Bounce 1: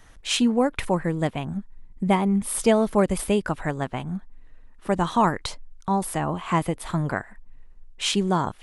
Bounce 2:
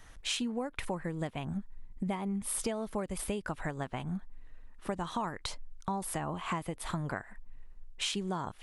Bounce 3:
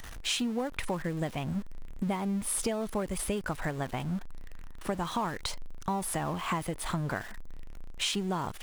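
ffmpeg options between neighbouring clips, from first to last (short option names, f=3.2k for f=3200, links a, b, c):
-af "equalizer=f=280:t=o:w=2.8:g=-2.5,acompressor=threshold=-29dB:ratio=10,volume=-2dB"
-af "aeval=exprs='val(0)+0.5*0.0075*sgn(val(0))':c=same,volume=2dB"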